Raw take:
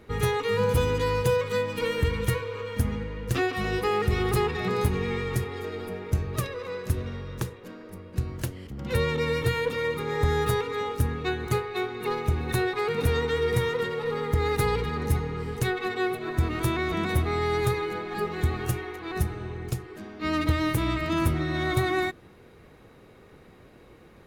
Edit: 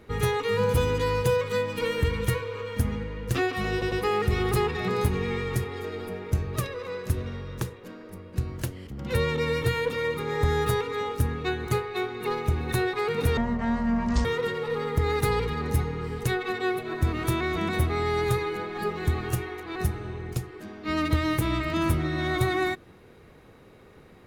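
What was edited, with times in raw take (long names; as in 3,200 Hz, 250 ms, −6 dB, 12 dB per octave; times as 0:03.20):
0:03.72: stutter 0.10 s, 3 plays
0:13.17–0:13.61: play speed 50%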